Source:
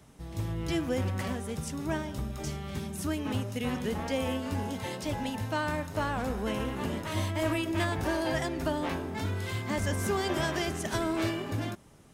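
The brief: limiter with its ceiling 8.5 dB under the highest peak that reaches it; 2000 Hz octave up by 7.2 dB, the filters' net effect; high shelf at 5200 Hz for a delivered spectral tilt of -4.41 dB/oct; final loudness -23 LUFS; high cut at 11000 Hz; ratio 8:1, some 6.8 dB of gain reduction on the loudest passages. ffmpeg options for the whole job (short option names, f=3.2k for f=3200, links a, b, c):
-af "lowpass=11k,equalizer=f=2k:t=o:g=8,highshelf=f=5.2k:g=7.5,acompressor=threshold=-30dB:ratio=8,volume=13.5dB,alimiter=limit=-14dB:level=0:latency=1"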